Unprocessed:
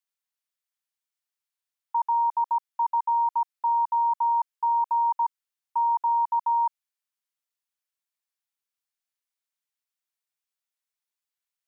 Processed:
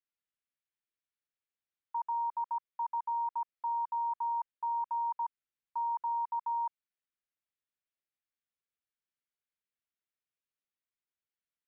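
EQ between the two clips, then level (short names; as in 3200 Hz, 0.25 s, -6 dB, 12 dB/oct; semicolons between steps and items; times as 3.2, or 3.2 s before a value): air absorption 350 m; bell 860 Hz -9 dB 0.9 oct; 0.0 dB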